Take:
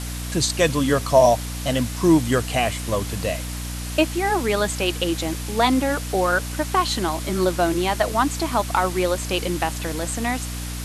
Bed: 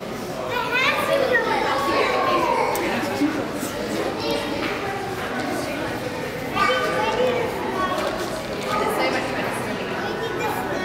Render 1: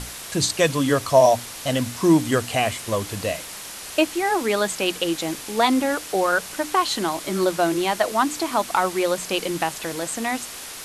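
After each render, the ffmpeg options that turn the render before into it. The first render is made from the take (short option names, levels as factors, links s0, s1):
-af "bandreject=f=60:t=h:w=6,bandreject=f=120:t=h:w=6,bandreject=f=180:t=h:w=6,bandreject=f=240:t=h:w=6,bandreject=f=300:t=h:w=6"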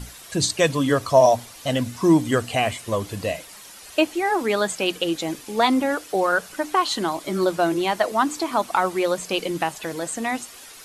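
-af "afftdn=nr=10:nf=-36"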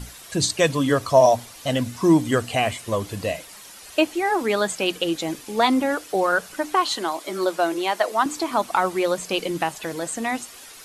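-filter_complex "[0:a]asettb=1/sr,asplit=3[s0][s1][s2];[s0]atrim=end=6.964[s3];[s1]atrim=start=6.96:end=8.26,asetpts=PTS-STARTPTS,afade=t=in:d=0.004:c=qsin,afade=t=out:st=1.296:d=0.004:c=qsin,highpass=350[s4];[s2]atrim=start=8.256[s5];[s3][s4]acrossfade=d=0.004:c1=hsin:c2=qsin[s6];[s6][s5]acrossfade=d=0.004:c1=qsin:c2=hsin"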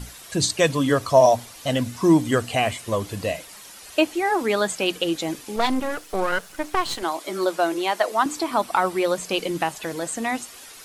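-filter_complex "[0:a]asettb=1/sr,asplit=3[s0][s1][s2];[s0]atrim=end=5.564[s3];[s1]atrim=start=5.56:end=7.03,asetpts=PTS-STARTPTS,afade=t=in:d=0.004:c=qsin,afade=t=out:st=1.466:d=0.004:c=qsin,aeval=exprs='if(lt(val(0),0),0.251*val(0),val(0))':c=same[s4];[s2]atrim=start=7.026[s5];[s3][s4]acrossfade=d=0.004:c1=hsin:c2=qsin[s6];[s6][s5]acrossfade=d=0.004:c1=qsin:c2=hsin,asettb=1/sr,asplit=3[s7][s8][s9];[s7]atrim=end=8.394[s10];[s8]atrim=start=8.39:end=9.11,asetpts=PTS-STARTPTS,afade=t=in:d=0.004:c=qsin,afade=t=out:st=0.716:d=0.004:c=qsin,bandreject=f=6600:w=10[s11];[s9]atrim=start=9.106[s12];[s10][s11]acrossfade=d=0.004:c1=hsin:c2=qsin[s13];[s13][s12]acrossfade=d=0.004:c1=qsin:c2=hsin"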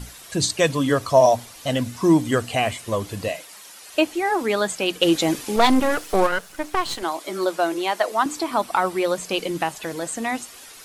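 -filter_complex "[0:a]asettb=1/sr,asplit=3[s0][s1][s2];[s0]atrim=end=3.284[s3];[s1]atrim=start=3.28:end=3.94,asetpts=PTS-STARTPTS,afade=t=in:d=0.004:c=qsin,afade=t=out:st=0.656:d=0.004:c=qsin,highpass=f=360:p=1[s4];[s2]atrim=start=3.936[s5];[s3][s4]acrossfade=d=0.004:c1=hsin:c2=qsin[s6];[s6][s5]acrossfade=d=0.004:c1=qsin:c2=hsin,asplit=3[s7][s8][s9];[s7]afade=t=out:st=5.01:d=0.02[s10];[s8]acontrast=68,afade=t=in:st=5.01:d=0.02,afade=t=out:st=6.26:d=0.02[s11];[s9]afade=t=in:st=6.26:d=0.02[s12];[s10][s11][s12]amix=inputs=3:normalize=0"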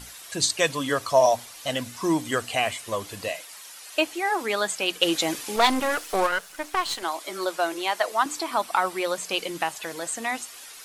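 -af "lowshelf=f=440:g=-12"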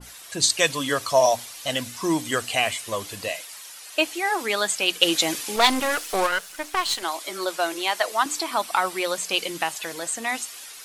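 -af "adynamicequalizer=threshold=0.02:dfrequency=1900:dqfactor=0.7:tfrequency=1900:tqfactor=0.7:attack=5:release=100:ratio=0.375:range=2.5:mode=boostabove:tftype=highshelf"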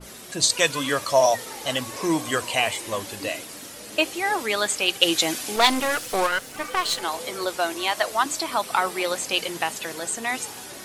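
-filter_complex "[1:a]volume=0.126[s0];[0:a][s0]amix=inputs=2:normalize=0"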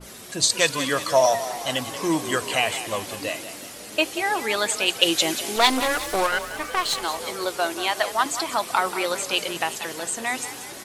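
-filter_complex "[0:a]asplit=6[s0][s1][s2][s3][s4][s5];[s1]adelay=184,afreqshift=35,volume=0.251[s6];[s2]adelay=368,afreqshift=70,volume=0.126[s7];[s3]adelay=552,afreqshift=105,volume=0.0631[s8];[s4]adelay=736,afreqshift=140,volume=0.0313[s9];[s5]adelay=920,afreqshift=175,volume=0.0157[s10];[s0][s6][s7][s8][s9][s10]amix=inputs=6:normalize=0"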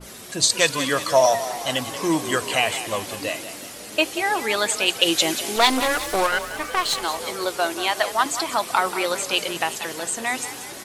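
-af "volume=1.19,alimiter=limit=0.794:level=0:latency=1"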